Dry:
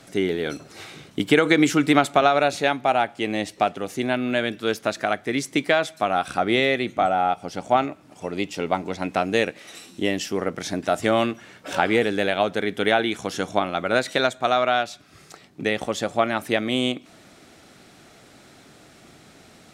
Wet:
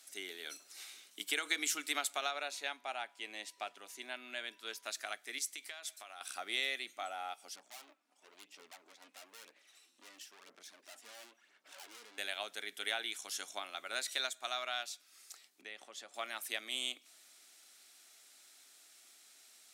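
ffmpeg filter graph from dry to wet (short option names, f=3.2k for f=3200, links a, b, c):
-filter_complex "[0:a]asettb=1/sr,asplit=3[a][b][c];[a]atrim=end=2.314[d];[b]atrim=start=2.31:end=4.86,asetpts=PTS-STARTPTS,afade=t=in:d=0.004:c=qsin,afade=t=out:st=2.546:d=0.004:c=qsin,highshelf=f=5k:g=-10,aeval=exprs='val(0)+0.00282*sin(2*PI*980*n/s)':c=same[e];[c]atrim=start=4.856[f];[d][e]acrossfade=d=0.004:c1=hsin:c2=qsin[g];[g][f]acrossfade=d=0.004:c1=qsin:c2=hsin,asettb=1/sr,asplit=3[h][i][j];[h]atrim=end=5.384[k];[i]atrim=start=5.38:end=6.21,asetpts=PTS-STARTPTS,afade=t=in:d=0.004:c=qsin,afade=t=out:st=0.826:d=0.004:c=qsin,equalizer=f=120:t=o:w=2.8:g=-8,acompressor=threshold=-27dB:ratio=5:attack=3.2:release=140:knee=1:detection=peak[l];[j]atrim=start=6.206[m];[k][l]acrossfade=d=0.004:c1=hsin:c2=qsin[n];[n][m]acrossfade=d=0.004:c1=qsin:c2=hsin,asettb=1/sr,asplit=3[o][p][q];[o]atrim=end=7.564[r];[p]atrim=start=7.56:end=12.18,asetpts=PTS-STARTPTS,afade=t=in:d=0.004:c=qsin,afade=t=out:st=4.616:d=0.004:c=qsin,lowpass=f=1.3k:p=1,aeval=exprs='(tanh(44.7*val(0)+0.7)-tanh(0.7))/44.7':c=same,aphaser=in_gain=1:out_gain=1:delay=4.2:decay=0.43:speed=1:type=sinusoidal[s];[q]atrim=start=12.176[t];[r][s]acrossfade=d=0.004:c1=hsin:c2=qsin[u];[u][t]acrossfade=d=0.004:c1=qsin:c2=hsin,asettb=1/sr,asplit=3[v][w][x];[v]atrim=end=15.614[y];[w]atrim=start=15.61:end=16.14,asetpts=PTS-STARTPTS,afade=t=in:d=0.004:c=qsin,afade=t=out:st=0.526:d=0.004:c=qsin,aemphasis=mode=reproduction:type=75kf,acompressor=threshold=-32dB:ratio=1.5:attack=3.2:release=140:knee=1:detection=peak[z];[x]atrim=start=16.136[aa];[y][z]acrossfade=d=0.004:c1=hsin:c2=qsin[ab];[ab][aa]acrossfade=d=0.004:c1=qsin:c2=hsin,highpass=f=220:w=0.5412,highpass=f=220:w=1.3066,aderivative,bandreject=f=490:w=13,volume=-3dB"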